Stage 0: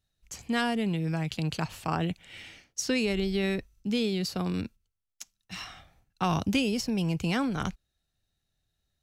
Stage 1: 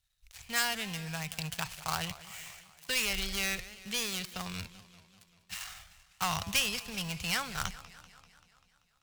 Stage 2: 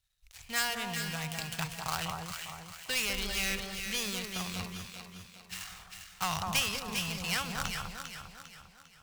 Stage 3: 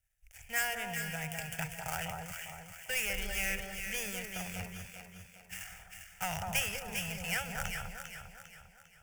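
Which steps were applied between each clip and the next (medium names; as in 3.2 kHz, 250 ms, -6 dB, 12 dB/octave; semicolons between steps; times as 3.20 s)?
dead-time distortion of 0.12 ms; amplifier tone stack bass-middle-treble 10-0-10; modulated delay 194 ms, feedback 62%, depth 179 cents, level -17 dB; trim +6.5 dB
echo whose repeats swap between lows and highs 200 ms, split 1.3 kHz, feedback 65%, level -2.5 dB; trim -1 dB
static phaser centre 1.1 kHz, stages 6; trim +1 dB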